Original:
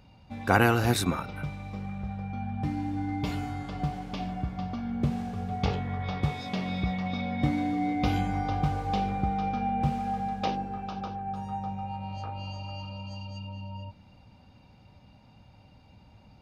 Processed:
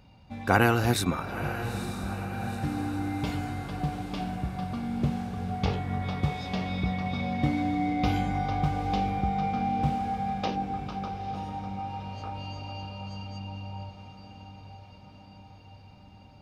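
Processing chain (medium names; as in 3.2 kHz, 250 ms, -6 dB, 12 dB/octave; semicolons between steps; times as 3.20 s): echo that smears into a reverb 900 ms, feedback 63%, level -10.5 dB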